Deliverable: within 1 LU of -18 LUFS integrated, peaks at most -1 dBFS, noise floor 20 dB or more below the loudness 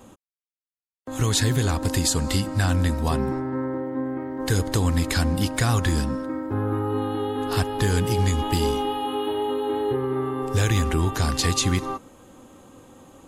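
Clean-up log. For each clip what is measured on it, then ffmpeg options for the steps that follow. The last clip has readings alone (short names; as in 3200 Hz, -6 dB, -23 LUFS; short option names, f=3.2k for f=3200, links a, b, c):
loudness -24.0 LUFS; peak -10.5 dBFS; loudness target -18.0 LUFS
-> -af "volume=6dB"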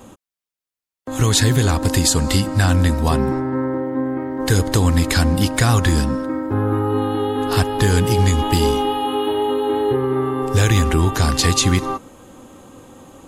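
loudness -18.0 LUFS; peak -4.5 dBFS; noise floor -89 dBFS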